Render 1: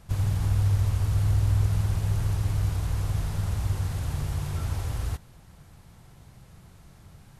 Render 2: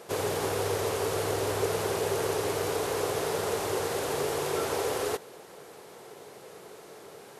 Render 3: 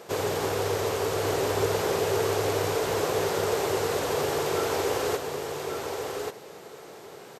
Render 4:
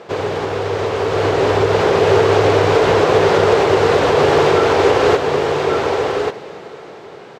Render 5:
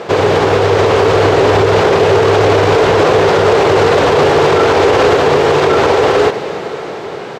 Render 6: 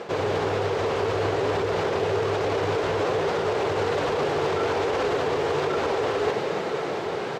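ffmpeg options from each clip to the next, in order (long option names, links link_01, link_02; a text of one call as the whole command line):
ffmpeg -i in.wav -af "highpass=frequency=430:width_type=q:width=4.9,volume=8dB" out.wav
ffmpeg -i in.wav -filter_complex "[0:a]equalizer=frequency=10000:width=5.6:gain=-14,asplit=2[link_01][link_02];[link_02]aecho=0:1:1137:0.562[link_03];[link_01][link_03]amix=inputs=2:normalize=0,volume=2dB" out.wav
ffmpeg -i in.wav -af "lowpass=3500,alimiter=limit=-19.5dB:level=0:latency=1:release=198,dynaudnorm=framelen=250:gausssize=11:maxgain=8dB,volume=8.5dB" out.wav
ffmpeg -i in.wav -af "alimiter=level_in=13dB:limit=-1dB:release=50:level=0:latency=1,volume=-1dB" out.wav
ffmpeg -i in.wav -af "areverse,acompressor=threshold=-19dB:ratio=5,areverse,flanger=delay=3.4:depth=8.6:regen=-53:speed=1.2:shape=triangular" out.wav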